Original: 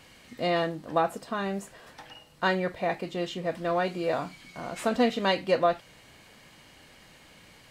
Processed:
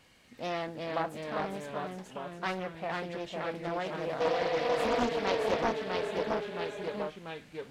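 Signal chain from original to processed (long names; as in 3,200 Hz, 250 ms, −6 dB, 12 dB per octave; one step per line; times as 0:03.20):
healed spectral selection 0:04.23–0:04.98, 470–6,600 Hz after
delay with pitch and tempo change per echo 339 ms, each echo −1 semitone, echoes 3
highs frequency-modulated by the lows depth 0.71 ms
level −8 dB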